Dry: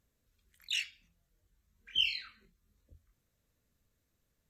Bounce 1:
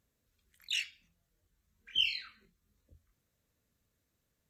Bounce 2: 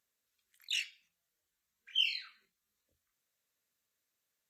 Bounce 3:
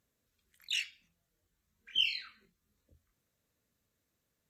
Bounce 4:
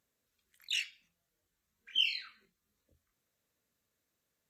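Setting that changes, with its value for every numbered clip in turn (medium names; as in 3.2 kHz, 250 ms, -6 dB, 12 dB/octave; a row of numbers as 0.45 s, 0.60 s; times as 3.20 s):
high-pass, cutoff frequency: 58 Hz, 1.5 kHz, 150 Hz, 380 Hz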